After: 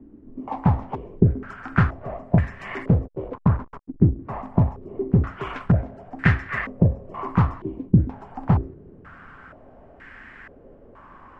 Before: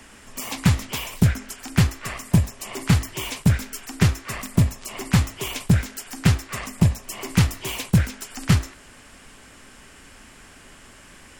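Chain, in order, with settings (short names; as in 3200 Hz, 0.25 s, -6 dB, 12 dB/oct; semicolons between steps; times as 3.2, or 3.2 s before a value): two-slope reverb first 0.36 s, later 4 s, from -18 dB, DRR 17 dB; 3.05–4.19 backlash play -23.5 dBFS; stepped low-pass 2.1 Hz 310–1800 Hz; gain -1 dB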